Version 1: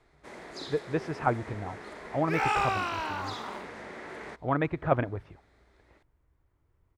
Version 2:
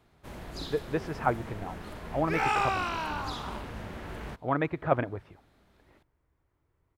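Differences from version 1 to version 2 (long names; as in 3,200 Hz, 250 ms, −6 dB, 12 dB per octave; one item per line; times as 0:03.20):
first sound: remove loudspeaker in its box 320–9,300 Hz, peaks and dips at 410 Hz +4 dB, 2,000 Hz +7 dB, 2,900 Hz −6 dB
master: add low-shelf EQ 91 Hz −8 dB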